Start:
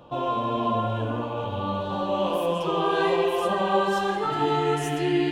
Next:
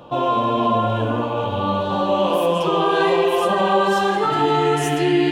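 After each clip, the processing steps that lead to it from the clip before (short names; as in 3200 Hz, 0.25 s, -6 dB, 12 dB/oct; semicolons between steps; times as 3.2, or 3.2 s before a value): low shelf 76 Hz -7.5 dB; in parallel at +3 dB: limiter -18 dBFS, peak gain reduction 7 dB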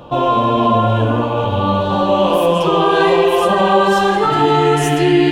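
low shelf 70 Hz +12 dB; gain +4.5 dB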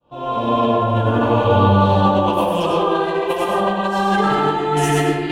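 opening faded in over 0.79 s; negative-ratio compressor -16 dBFS, ratio -0.5; plate-style reverb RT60 1.1 s, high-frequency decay 0.4×, pre-delay 80 ms, DRR -2 dB; gain -4.5 dB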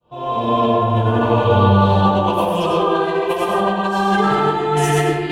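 notch comb 280 Hz; gain +1.5 dB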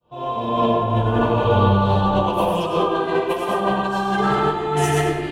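frequency-shifting echo 0.101 s, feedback 52%, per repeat -65 Hz, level -15 dB; noise-modulated level, depth 55%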